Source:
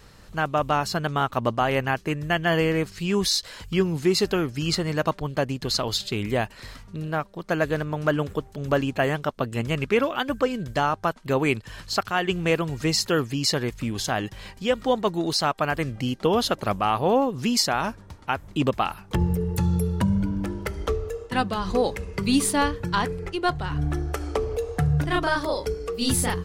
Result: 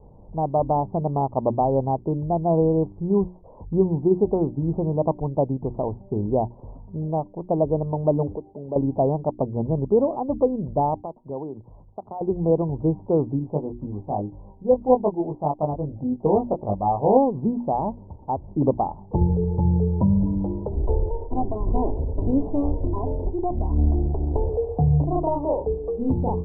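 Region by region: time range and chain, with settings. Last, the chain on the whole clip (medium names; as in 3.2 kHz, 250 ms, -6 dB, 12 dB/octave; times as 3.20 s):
8.36–8.76 s: compression 2:1, threshold -32 dBFS + band-pass filter 470 Hz, Q 0.74
11.01–12.21 s: compression, threshold -28 dBFS + bass shelf 160 Hz -9 dB + three bands expanded up and down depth 70%
13.39–17.17 s: doubling 20 ms -3 dB + upward expansion, over -28 dBFS
20.72–24.49 s: comb filter that takes the minimum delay 2.9 ms + compression 1.5:1, threshold -34 dBFS + tilt EQ -2.5 dB/octave
whole clip: steep low-pass 940 Hz 72 dB/octave; hum notches 60/120/180/240/300/360 Hz; trim +3.5 dB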